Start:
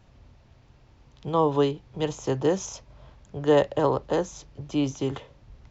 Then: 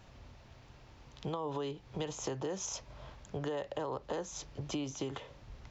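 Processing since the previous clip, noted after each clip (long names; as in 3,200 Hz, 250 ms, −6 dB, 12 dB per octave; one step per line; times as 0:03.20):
low-shelf EQ 430 Hz −6 dB
brickwall limiter −22 dBFS, peak gain reduction 10 dB
downward compressor 6 to 1, threshold −39 dBFS, peak gain reduction 12 dB
level +4 dB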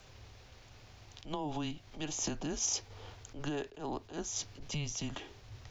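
frequency shifter −150 Hz
high-shelf EQ 2,900 Hz +9 dB
level that may rise only so fast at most 170 dB per second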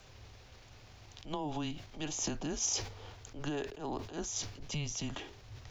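level that may fall only so fast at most 92 dB per second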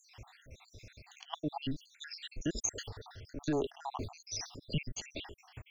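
time-frequency cells dropped at random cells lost 76%
level +5.5 dB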